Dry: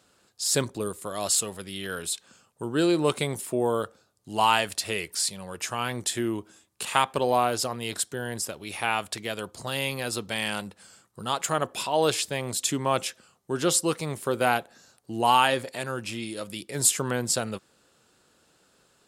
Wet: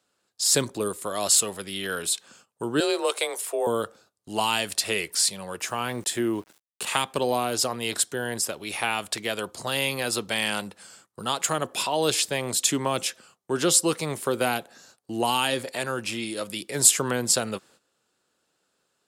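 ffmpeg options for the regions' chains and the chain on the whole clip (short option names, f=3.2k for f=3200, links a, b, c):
-filter_complex "[0:a]asettb=1/sr,asplit=3[a][b][c];[a]atrim=end=2.804[d];[b]atrim=start=2.8:end=3.67,asetpts=PTS-STARTPTS,afade=t=in:d=0.004:c=qsin,afade=t=out:st=0.866:d=0.004:c=qsin,highpass=f=400:w=0.5412,highpass=f=400:w=1.3066,afreqshift=29[e];[c]atrim=start=3.666[f];[d][e]acrossfade=d=0.004:c1=hsin:c2=qsin[g];[g][f]acrossfade=d=0.004:c1=qsin:c2=hsin,asettb=1/sr,asplit=3[h][i][j];[h]atrim=end=5.604[k];[i]atrim=start=5.6:end=6.87,asetpts=PTS-STARTPTS,afade=t=in:d=0.004:c=qsin,afade=t=out:st=1.266:d=0.004:c=qsin,equalizer=f=4.8k:w=0.36:g=-4.5,aeval=exprs='val(0)*gte(abs(val(0)),0.00282)':c=same[l];[j]atrim=start=6.866[m];[k][l]acrossfade=d=0.004:c1=hsin:c2=qsin[n];[n][m]acrossfade=d=0.004:c1=qsin:c2=hsin,lowshelf=f=140:g=-10.5,agate=range=-14dB:threshold=-58dB:ratio=16:detection=peak,acrossover=split=370|3000[o][p][q];[p]acompressor=threshold=-29dB:ratio=6[r];[o][r][q]amix=inputs=3:normalize=0,volume=4.5dB"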